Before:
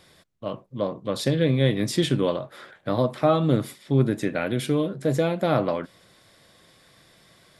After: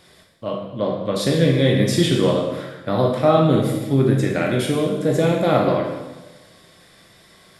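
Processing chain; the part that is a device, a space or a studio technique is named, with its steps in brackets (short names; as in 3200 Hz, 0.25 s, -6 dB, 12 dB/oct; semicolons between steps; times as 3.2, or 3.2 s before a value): bathroom (reverb RT60 1.2 s, pre-delay 15 ms, DRR -0.5 dB); gain +2.5 dB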